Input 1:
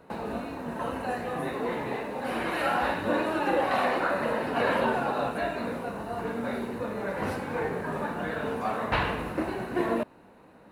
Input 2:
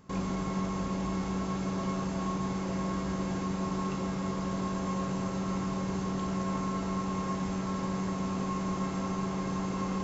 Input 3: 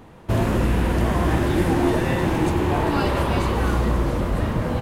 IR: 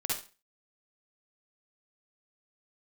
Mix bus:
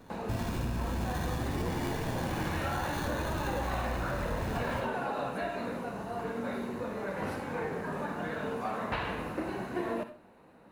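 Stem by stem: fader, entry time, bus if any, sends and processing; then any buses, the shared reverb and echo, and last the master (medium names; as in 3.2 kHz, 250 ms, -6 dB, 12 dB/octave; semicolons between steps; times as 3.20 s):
-5.5 dB, 0.00 s, send -13 dB, none
-16.5 dB, 0.00 s, no send, none
-16.5 dB, 0.00 s, send -5.5 dB, comb 1 ms; sample-rate reducer 2.6 kHz, jitter 0%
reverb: on, RT60 0.35 s, pre-delay 46 ms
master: compression, threshold -29 dBFS, peak gain reduction 7 dB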